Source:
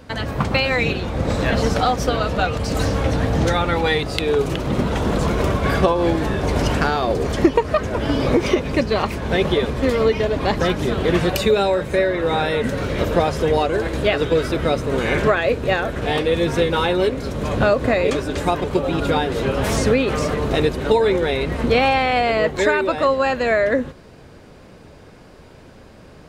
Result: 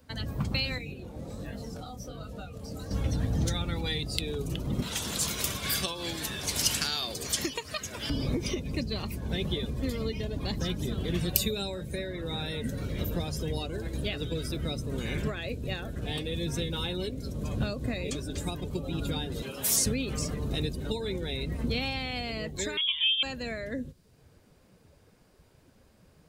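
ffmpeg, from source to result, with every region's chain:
-filter_complex "[0:a]asettb=1/sr,asplit=3[s0][s1][s2];[s0]atrim=end=0.784[s3];[s1]atrim=start=0.78:end=2.91,asetpts=PTS-STARTPTS,afade=t=in:d=0.004:c=qsin,afade=t=out:st=2.126:d=0.004:c=qsin,acrossover=split=87|250|2300|7800[s4][s5][s6][s7][s8];[s4]acompressor=threshold=0.0126:ratio=3[s9];[s5]acompressor=threshold=0.0224:ratio=3[s10];[s6]acompressor=threshold=0.0562:ratio=3[s11];[s7]acompressor=threshold=0.00891:ratio=3[s12];[s8]acompressor=threshold=0.00398:ratio=3[s13];[s9][s10][s11][s12][s13]amix=inputs=5:normalize=0,flanger=delay=19.5:depth=6.9:speed=1.3[s14];[s2]atrim=start=2.906[s15];[s3][s14]acrossfade=d=0.004:c1=hsin:c2=qsin[s16];[s16][s15]acrossfade=d=0.004:c1=qsin:c2=hsin,asettb=1/sr,asplit=3[s17][s18][s19];[s17]atrim=end=4.824[s20];[s18]atrim=start=4.82:end=8.1,asetpts=PTS-STARTPTS,afade=t=in:d=0.004:c=qsin,afade=t=out:st=3.276:d=0.004:c=qsin,highpass=67,tiltshelf=f=680:g=-9[s21];[s19]atrim=start=8.096[s22];[s20][s21]acrossfade=d=0.004:c1=hsin:c2=qsin[s23];[s23][s22]acrossfade=d=0.004:c1=qsin:c2=hsin,asettb=1/sr,asplit=3[s24][s25][s26];[s24]atrim=end=19.424[s27];[s25]atrim=start=19.42:end=19.86,asetpts=PTS-STARTPTS,afade=t=in:d=0.004:c=qsin,afade=t=out:st=0.436:d=0.004:c=qsin,highpass=f=450:p=1,highshelf=f=5100:g=6[s28];[s26]atrim=start=19.856[s29];[s27][s28]acrossfade=d=0.004:c1=hsin:c2=qsin[s30];[s30][s29]acrossfade=d=0.004:c1=qsin:c2=hsin,asettb=1/sr,asplit=3[s31][s32][s33];[s31]atrim=end=22.774[s34];[s32]atrim=start=22.77:end=23.23,asetpts=PTS-STARTPTS,afade=t=in:d=0.004:c=qsin,afade=t=out:st=0.456:d=0.004:c=qsin,lowpass=f=3100:t=q:w=0.5098,lowpass=f=3100:t=q:w=0.6013,lowpass=f=3100:t=q:w=0.9,lowpass=f=3100:t=q:w=2.563,afreqshift=-3700,aeval=exprs='val(0)+0.00316*(sin(2*PI*50*n/s)+sin(2*PI*2*50*n/s)/2+sin(2*PI*3*50*n/s)/3+sin(2*PI*4*50*n/s)/4+sin(2*PI*5*50*n/s)/5)':c=same[s35];[s33]atrim=start=23.226[s36];[s34][s35]acrossfade=d=0.004:c1=hsin:c2=qsin[s37];[s37][s36]acrossfade=d=0.004:c1=qsin:c2=hsin,aemphasis=mode=production:type=50fm,afftdn=nr=12:nf=-30,acrossover=split=270|3000[s38][s39][s40];[s39]acompressor=threshold=0.00562:ratio=2[s41];[s38][s41][s40]amix=inputs=3:normalize=0,volume=0.447"

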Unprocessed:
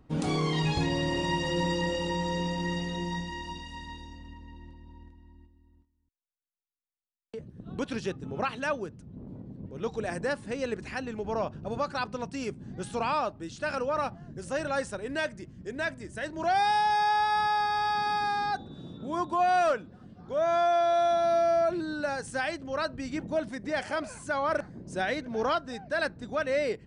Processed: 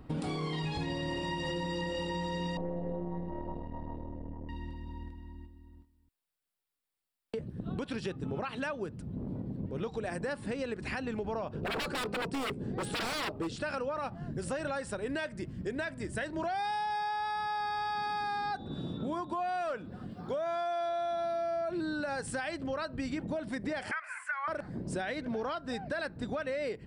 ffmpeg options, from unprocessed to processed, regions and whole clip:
-filter_complex "[0:a]asettb=1/sr,asplit=3[s0][s1][s2];[s0]atrim=end=2.574[s3];[s1]atrim=start=2.57:end=4.49,asetpts=PTS-STARTPTS,afade=t=in:d=0.004:c=qsin,afade=t=out:st=1.916:d=0.004:c=qsin,aeval=exprs='if(lt(val(0),0),0.251*val(0),val(0))':c=same,lowpass=f=580:t=q:w=2.6[s4];[s2]atrim=start=4.486[s5];[s3][s4]acrossfade=d=0.004:c1=hsin:c2=qsin[s6];[s6][s5]acrossfade=d=0.004:c1=qsin:c2=hsin,asettb=1/sr,asplit=3[s7][s8][s9];[s7]atrim=end=11.534[s10];[s8]atrim=start=11.53:end=13.56,asetpts=PTS-STARTPTS,afade=t=in:d=0.004:c=qsin,afade=t=out:st=2.026:d=0.004:c=qsin,equalizer=f=450:w=2:g=13.5,aeval=exprs='0.0316*(abs(mod(val(0)/0.0316+3,4)-2)-1)':c=same[s11];[s9]atrim=start=13.556[s12];[s10][s11]acrossfade=d=0.004:c1=hsin:c2=qsin[s13];[s13][s12]acrossfade=d=0.004:c1=qsin:c2=hsin,asettb=1/sr,asplit=3[s14][s15][s16];[s14]atrim=end=20.114[s17];[s15]atrim=start=20.11:end=20.89,asetpts=PTS-STARTPTS,afade=t=in:d=0.004:c=qsin,afade=t=out:st=0.776:d=0.004:c=qsin,highpass=f=130:p=1,highshelf=f=6000:g=6.5[s18];[s16]atrim=start=20.886[s19];[s17][s18]acrossfade=d=0.004:c1=hsin:c2=qsin[s20];[s20][s19]acrossfade=d=0.004:c1=qsin:c2=hsin,asettb=1/sr,asplit=3[s21][s22][s23];[s21]atrim=end=23.914[s24];[s22]atrim=start=23.91:end=24.48,asetpts=PTS-STARTPTS,afade=t=in:d=0.004:c=qsin,afade=t=out:st=0.566:d=0.004:c=qsin,highpass=f=1200:w=0.5412,highpass=f=1200:w=1.3066,highshelf=f=2800:t=q:w=3:g=-11.5[s25];[s23]atrim=start=24.476[s26];[s24][s25]acrossfade=d=0.004:c1=hsin:c2=qsin[s27];[s27][s26]acrossfade=d=0.004:c1=qsin:c2=hsin,equalizer=f=6300:t=o:w=0.23:g=-11,alimiter=level_in=1.41:limit=0.0631:level=0:latency=1:release=174,volume=0.708,acompressor=threshold=0.00891:ratio=3,volume=2.24"

